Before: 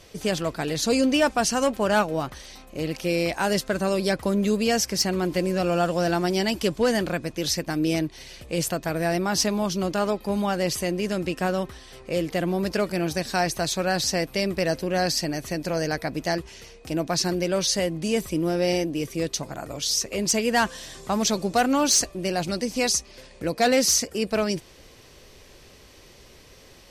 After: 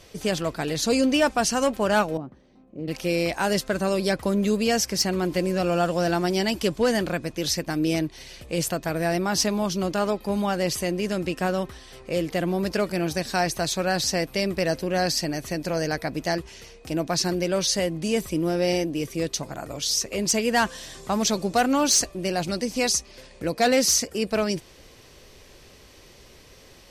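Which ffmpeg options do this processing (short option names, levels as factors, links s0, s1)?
-filter_complex "[0:a]asettb=1/sr,asplit=3[s0][s1][s2];[s0]atrim=end=2.174[s3];[s1]atrim=start=2.17:end=2.88,asetpts=PTS-STARTPTS,afade=t=in:d=0.004:c=qsin,afade=t=out:st=0.706:d=0.004:c=qsin,bandpass=f=230:t=q:w=1.4[s4];[s2]atrim=start=2.876[s5];[s3][s4]acrossfade=d=0.004:c1=hsin:c2=qsin[s6];[s6][s5]acrossfade=d=0.004:c1=qsin:c2=hsin"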